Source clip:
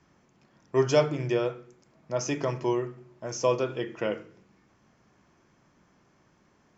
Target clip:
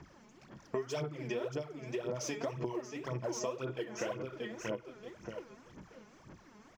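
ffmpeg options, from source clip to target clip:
ffmpeg -i in.wav -af "aecho=1:1:631|1262|1893:0.316|0.0822|0.0214,aphaser=in_gain=1:out_gain=1:delay=4.8:decay=0.72:speed=1.9:type=sinusoidal,acompressor=threshold=-36dB:ratio=12,volume=2dB" out.wav

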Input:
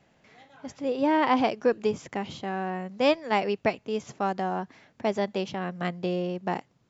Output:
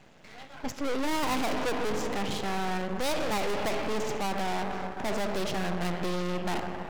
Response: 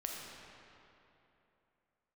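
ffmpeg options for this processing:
-filter_complex "[0:a]acontrast=79,asplit=2[link_01][link_02];[1:a]atrim=start_sample=2205[link_03];[link_02][link_03]afir=irnorm=-1:irlink=0,volume=-5dB[link_04];[link_01][link_04]amix=inputs=2:normalize=0,aeval=exprs='max(val(0),0)':channel_layout=same,apsyclip=8.5dB,volume=16dB,asoftclip=hard,volume=-16dB,volume=-7.5dB"

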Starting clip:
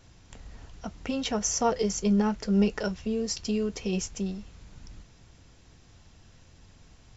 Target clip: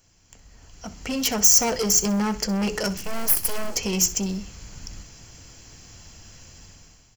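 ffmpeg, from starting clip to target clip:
ffmpeg -i in.wav -filter_complex "[0:a]bandreject=frequency=60:width_type=h:width=6,bandreject=frequency=120:width_type=h:width=6,bandreject=frequency=180:width_type=h:width=6,bandreject=frequency=240:width_type=h:width=6,bandreject=frequency=300:width_type=h:width=6,bandreject=frequency=360:width_type=h:width=6,bandreject=frequency=420:width_type=h:width=6,asoftclip=type=tanh:threshold=-28.5dB,dynaudnorm=framelen=600:gausssize=3:maxgain=15dB,asettb=1/sr,asplit=3[link_01][link_02][link_03];[link_01]atrim=end=2.974[link_04];[link_02]atrim=start=2.97:end=3.76,asetpts=PTS-STARTPTS,afade=type=in:duration=0.004:curve=qsin,afade=type=out:start_time=0.786:duration=0.004:curve=qsin,aeval=exprs='abs(val(0))':channel_layout=same[link_05];[link_03]atrim=start=3.756[link_06];[link_04][link_05]acrossfade=duration=0.004:curve1=hsin:curve2=qsin[link_07];[link_07][link_06]acrossfade=duration=0.004:curve1=qsin:curve2=hsin,aemphasis=mode=production:type=75fm,bandreject=frequency=3700:width=5.9,asplit=2[link_08][link_09];[link_09]aecho=0:1:64|128|192:0.141|0.0438|0.0136[link_10];[link_08][link_10]amix=inputs=2:normalize=0,acrusher=bits=8:mode=log:mix=0:aa=0.000001,volume=-7dB" out.wav

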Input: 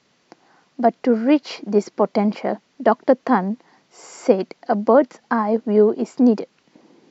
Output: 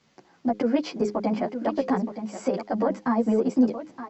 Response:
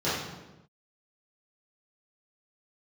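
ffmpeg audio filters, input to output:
-filter_complex "[0:a]asetrate=26222,aresample=44100,atempo=1.68179,bandreject=frequency=60:width_type=h:width=6,bandreject=frequency=120:width_type=h:width=6,bandreject=frequency=180:width_type=h:width=6,bandreject=frequency=240:width_type=h:width=6,bandreject=frequency=300:width_type=h:width=6,acrossover=split=3600[link_01][link_02];[link_01]alimiter=limit=-13dB:level=0:latency=1:release=119[link_03];[link_03][link_02]amix=inputs=2:normalize=0,asetrate=76440,aresample=44100,lowshelf=frequency=170:gain=9.5,aecho=1:1:921:0.282,asplit=2[link_04][link_05];[link_05]adelay=9.8,afreqshift=-1.9[link_06];[link_04][link_06]amix=inputs=2:normalize=1"

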